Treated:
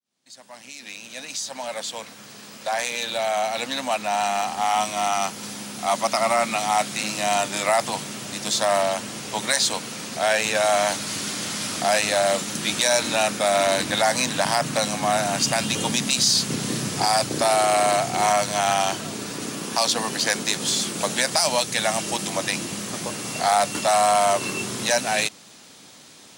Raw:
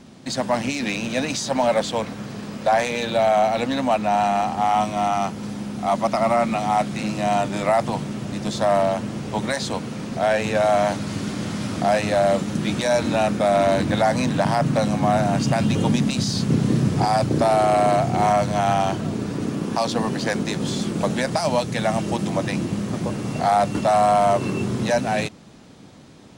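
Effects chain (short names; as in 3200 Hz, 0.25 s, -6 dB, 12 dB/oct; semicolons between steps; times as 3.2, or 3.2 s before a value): opening faded in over 5.47 s; tilt +4 dB/oct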